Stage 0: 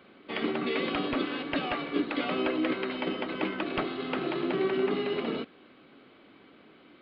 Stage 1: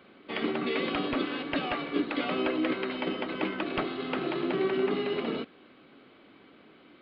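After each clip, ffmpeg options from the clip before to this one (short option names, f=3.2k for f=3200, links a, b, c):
-af anull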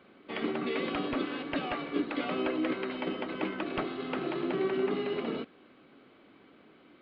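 -af "highshelf=f=3.6k:g=-6.5,volume=-2dB"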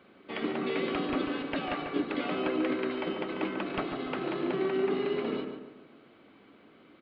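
-filter_complex "[0:a]asplit=2[a][b];[b]adelay=143,lowpass=f=2.2k:p=1,volume=-6dB,asplit=2[c][d];[d]adelay=143,lowpass=f=2.2k:p=1,volume=0.44,asplit=2[e][f];[f]adelay=143,lowpass=f=2.2k:p=1,volume=0.44,asplit=2[g][h];[h]adelay=143,lowpass=f=2.2k:p=1,volume=0.44,asplit=2[i][j];[j]adelay=143,lowpass=f=2.2k:p=1,volume=0.44[k];[a][c][e][g][i][k]amix=inputs=6:normalize=0"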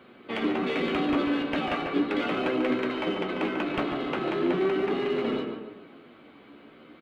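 -filter_complex "[0:a]asplit=2[a][b];[b]adelay=17,volume=-12dB[c];[a][c]amix=inputs=2:normalize=0,asplit=2[d][e];[e]asoftclip=type=hard:threshold=-34.5dB,volume=-7dB[f];[d][f]amix=inputs=2:normalize=0,flanger=delay=8:depth=5.9:regen=51:speed=0.38:shape=sinusoidal,volume=6.5dB"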